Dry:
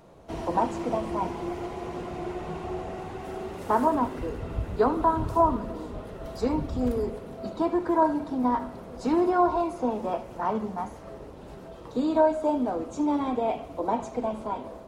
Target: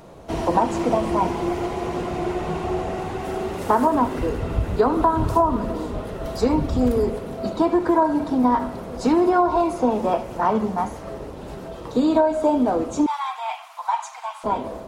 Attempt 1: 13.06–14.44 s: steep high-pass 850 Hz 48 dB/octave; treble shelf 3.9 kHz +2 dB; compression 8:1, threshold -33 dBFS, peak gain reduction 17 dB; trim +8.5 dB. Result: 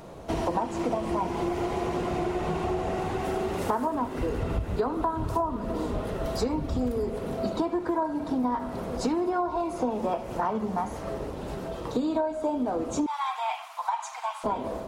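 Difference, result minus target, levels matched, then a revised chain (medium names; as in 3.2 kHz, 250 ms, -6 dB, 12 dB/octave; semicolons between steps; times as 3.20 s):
compression: peak gain reduction +9.5 dB
13.06–14.44 s: steep high-pass 850 Hz 48 dB/octave; treble shelf 3.9 kHz +2 dB; compression 8:1, threshold -22 dBFS, peak gain reduction 7.5 dB; trim +8.5 dB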